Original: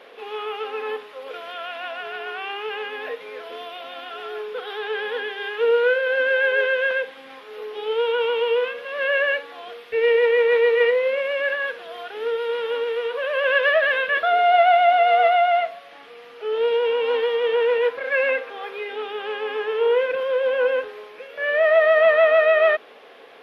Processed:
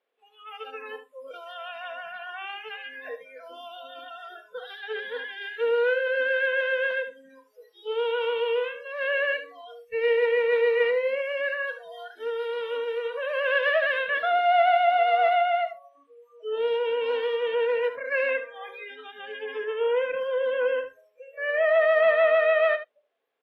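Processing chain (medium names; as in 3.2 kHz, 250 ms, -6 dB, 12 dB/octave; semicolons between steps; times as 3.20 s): spectral noise reduction 30 dB; delay 74 ms -12 dB; trim -5 dB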